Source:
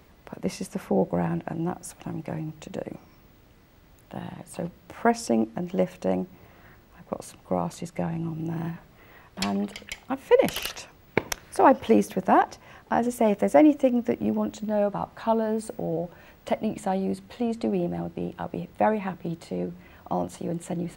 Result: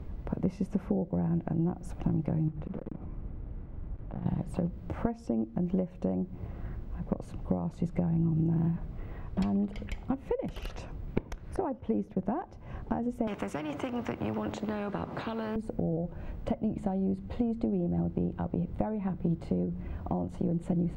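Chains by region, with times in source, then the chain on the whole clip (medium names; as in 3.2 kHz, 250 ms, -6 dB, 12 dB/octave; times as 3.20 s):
2.48–4.26 s: block-companded coder 3-bit + low-pass 1.9 kHz + compression 4:1, threshold -44 dBFS
11.56–12.26 s: expander -37 dBFS + treble shelf 6.7 kHz -9.5 dB
13.27–15.56 s: high-pass 260 Hz + treble shelf 5.6 kHz -6 dB + spectrum-flattening compressor 4:1
whole clip: compression 8:1, threshold -35 dBFS; tilt EQ -4.5 dB/octave; band-stop 1.8 kHz, Q 24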